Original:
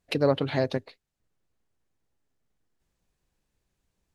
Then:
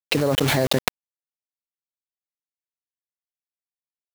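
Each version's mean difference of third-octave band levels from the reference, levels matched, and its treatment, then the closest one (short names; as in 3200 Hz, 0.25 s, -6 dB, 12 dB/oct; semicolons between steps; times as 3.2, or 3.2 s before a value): 11.5 dB: bit-crush 6-bit; fast leveller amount 100%; gain -1 dB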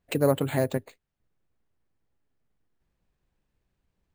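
4.5 dB: tone controls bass +2 dB, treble -9 dB; careless resampling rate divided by 4×, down none, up hold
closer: second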